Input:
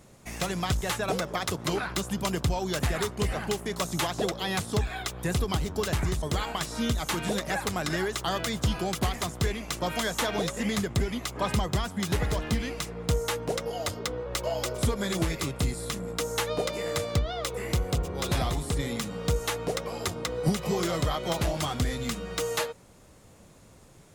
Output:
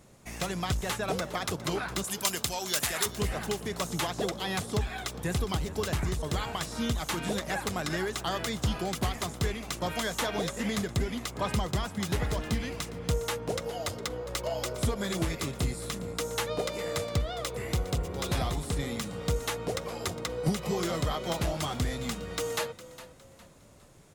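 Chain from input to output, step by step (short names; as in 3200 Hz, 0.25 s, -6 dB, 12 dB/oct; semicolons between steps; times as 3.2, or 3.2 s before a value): 2.04–3.06 tilt +3.5 dB/oct; on a send: frequency-shifting echo 0.409 s, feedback 35%, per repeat +37 Hz, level -16 dB; on the sum: gain -2.5 dB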